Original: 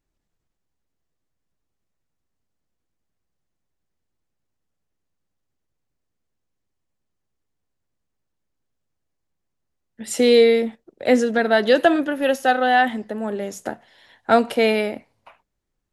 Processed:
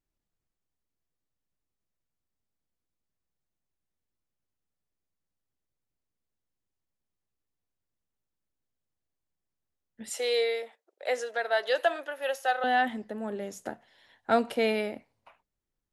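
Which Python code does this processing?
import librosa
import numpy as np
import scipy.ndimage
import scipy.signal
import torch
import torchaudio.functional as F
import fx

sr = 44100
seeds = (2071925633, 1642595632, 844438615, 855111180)

y = fx.highpass(x, sr, hz=520.0, slope=24, at=(10.09, 12.64))
y = F.gain(torch.from_numpy(y), -8.5).numpy()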